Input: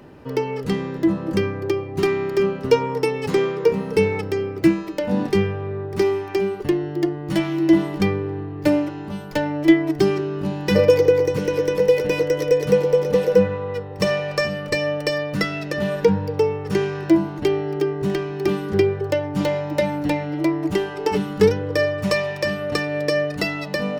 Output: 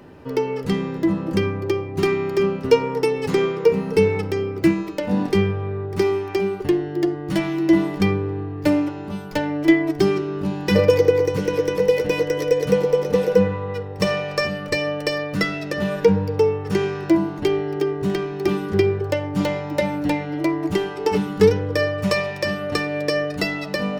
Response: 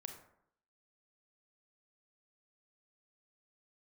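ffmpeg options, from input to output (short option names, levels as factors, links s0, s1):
-filter_complex "[0:a]asplit=2[s0][s1];[1:a]atrim=start_sample=2205,lowpass=8200,adelay=11[s2];[s1][s2]afir=irnorm=-1:irlink=0,volume=0.501[s3];[s0][s3]amix=inputs=2:normalize=0"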